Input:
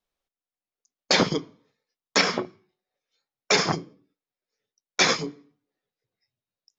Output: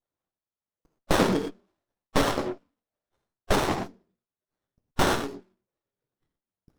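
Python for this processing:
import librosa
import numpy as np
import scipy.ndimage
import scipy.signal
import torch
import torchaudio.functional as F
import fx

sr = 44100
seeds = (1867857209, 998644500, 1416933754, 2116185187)

y = fx.hpss_only(x, sr, part='percussive')
y = fx.rev_gated(y, sr, seeds[0], gate_ms=140, shape='flat', drr_db=1.5)
y = fx.running_max(y, sr, window=17)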